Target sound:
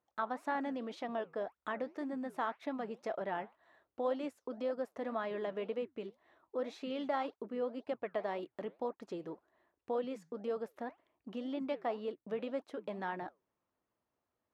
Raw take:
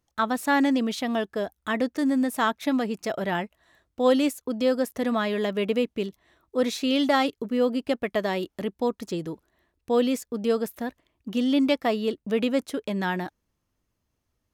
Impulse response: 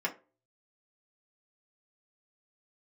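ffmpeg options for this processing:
-af "acompressor=threshold=0.0141:ratio=2,bandpass=f=780:t=q:w=0.82:csg=0,flanger=delay=1.3:depth=8.5:regen=-83:speed=1.9:shape=triangular,volume=1.5"

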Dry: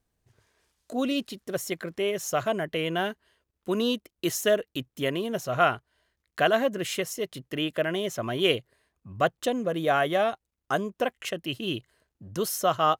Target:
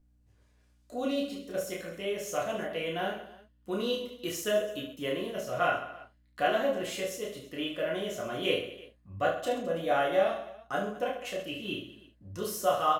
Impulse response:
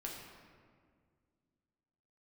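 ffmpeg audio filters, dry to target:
-filter_complex "[0:a]aecho=1:1:30|72|130.8|213.1|328.4:0.631|0.398|0.251|0.158|0.1,aeval=exprs='val(0)+0.00141*(sin(2*PI*60*n/s)+sin(2*PI*2*60*n/s)/2+sin(2*PI*3*60*n/s)/3+sin(2*PI*4*60*n/s)/4+sin(2*PI*5*60*n/s)/5)':c=same[s0];[1:a]atrim=start_sample=2205,atrim=end_sample=3528,asetrate=74970,aresample=44100[s1];[s0][s1]afir=irnorm=-1:irlink=0"

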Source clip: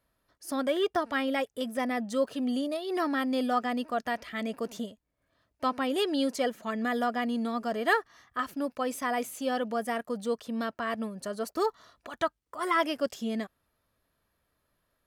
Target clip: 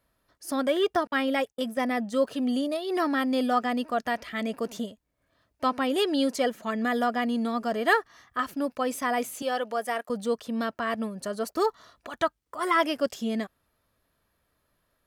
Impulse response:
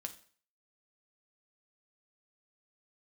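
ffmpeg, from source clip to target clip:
-filter_complex "[0:a]asettb=1/sr,asplit=3[s0][s1][s2];[s0]atrim=end=1.074[s3];[s1]atrim=start=1.07:end=2.23,asetpts=PTS-STARTPTS,afade=t=in:d=0.004:c=qsin,afade=t=out:st=1.156:d=0.004:c=qsin,agate=range=0.00398:threshold=0.0141:ratio=16:detection=peak[s4];[s2]atrim=start=2.226[s5];[s3][s4]acrossfade=d=0.004:c1=hsin:c2=qsin[s6];[s6][s5]acrossfade=d=0.004:c1=qsin:c2=hsin,asettb=1/sr,asplit=3[s7][s8][s9];[s7]atrim=end=9.424[s10];[s8]atrim=start=9.42:end=10.1,asetpts=PTS-STARTPTS,afade=t=in:d=0.004:c=qsin,afade=t=out:st=0.676:d=0.004:c=qsin,highpass=410[s11];[s9]atrim=start=10.096[s12];[s10][s11]acrossfade=d=0.004:c1=hsin:c2=qsin[s13];[s13][s12]acrossfade=d=0.004:c1=qsin:c2=hsin,volume=1.41"

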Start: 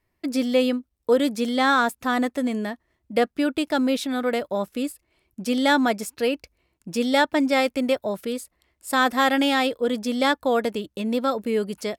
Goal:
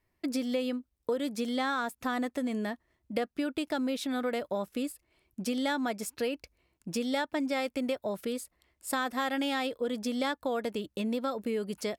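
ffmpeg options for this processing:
-af "acompressor=threshold=0.0501:ratio=4,volume=0.708"

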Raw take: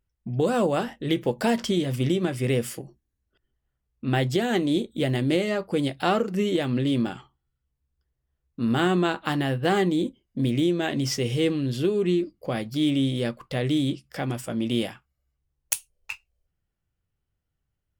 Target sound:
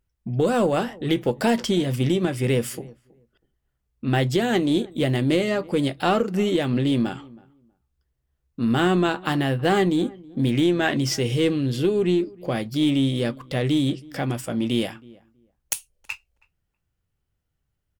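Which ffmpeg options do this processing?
-filter_complex "[0:a]asettb=1/sr,asplit=3[s0][s1][s2];[s0]atrim=end=10.474[s3];[s1]atrim=start=10.47:end=10.97,asetpts=PTS-STARTPTS,afade=t=in:d=0.004:c=qsin,afade=t=out:st=0.496:d=0.004:c=qsin,equalizer=f=1400:t=o:w=1.7:g=6.5[s4];[s2]atrim=start=10.966[s5];[s3][s4]acrossfade=d=0.004:c1=hsin:c2=qsin[s6];[s6][s5]acrossfade=d=0.004:c1=qsin:c2=hsin,asplit=2[s7][s8];[s8]aeval=exprs='clip(val(0),-1,0.0708)':c=same,volume=0.299[s9];[s7][s9]amix=inputs=2:normalize=0,asplit=2[s10][s11];[s11]adelay=322,lowpass=f=1200:p=1,volume=0.075,asplit=2[s12][s13];[s13]adelay=322,lowpass=f=1200:p=1,volume=0.18[s14];[s10][s12][s14]amix=inputs=3:normalize=0,alimiter=level_in=2.11:limit=0.891:release=50:level=0:latency=1,volume=0.501"

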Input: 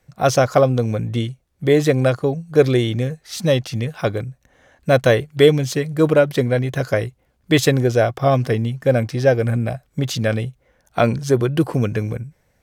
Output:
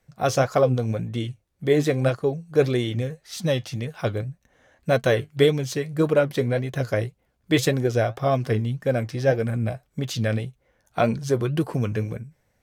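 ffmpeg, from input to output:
-af "flanger=delay=4.4:depth=5.4:regen=65:speed=1.8:shape=sinusoidal,volume=0.891"

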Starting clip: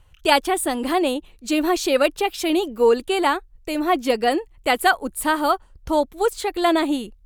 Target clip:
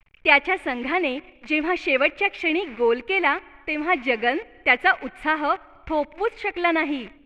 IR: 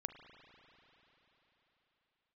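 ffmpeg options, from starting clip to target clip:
-filter_complex "[0:a]acrusher=bits=7:dc=4:mix=0:aa=0.000001,lowpass=f=2300:t=q:w=6.3,asplit=2[s0][s1];[1:a]atrim=start_sample=2205,afade=t=out:st=0.4:d=0.01,atrim=end_sample=18081[s2];[s1][s2]afir=irnorm=-1:irlink=0,volume=0.251[s3];[s0][s3]amix=inputs=2:normalize=0,volume=0.501"

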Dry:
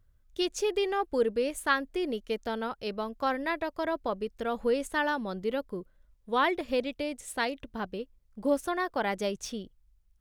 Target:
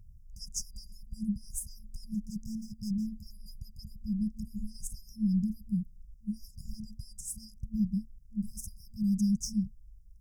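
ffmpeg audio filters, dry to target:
-filter_complex "[0:a]asettb=1/sr,asplit=3[s0][s1][s2];[s0]atrim=end=2.144[s3];[s1]atrim=start=2.14:end=3.07,asetpts=PTS-STARTPTS,afade=t=in:d=0.004:c=qsin,afade=t=out:st=0.926:d=0.004:c=qsin,volume=47.3,asoftclip=hard,volume=0.0211[s4];[s2]atrim=start=3.066[s5];[s3][s4]acrossfade=d=0.004:c1=hsin:c2=qsin[s6];[s6][s5]acrossfade=d=0.004:c1=qsin:c2=hsin,lowshelf=f=720:t=q:w=3:g=9,acontrast=53,afftfilt=real='re*(1-between(b*sr/4096,220,4800))':imag='im*(1-between(b*sr/4096,220,4800))':win_size=4096:overlap=0.75,volume=0.708"

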